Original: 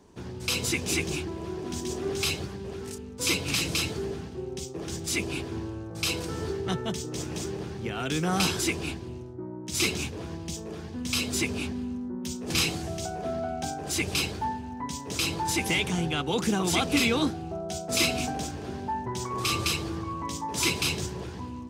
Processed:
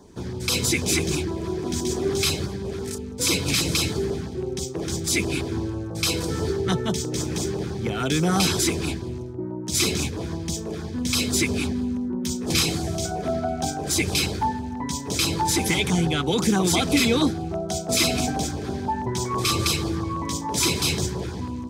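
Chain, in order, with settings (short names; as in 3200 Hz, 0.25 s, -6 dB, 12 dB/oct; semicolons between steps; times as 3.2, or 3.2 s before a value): notch 2800 Hz, Q 7.7; in parallel at +2.5 dB: limiter -19.5 dBFS, peak gain reduction 7.5 dB; on the sum: LFO notch saw down 6.1 Hz 490–2600 Hz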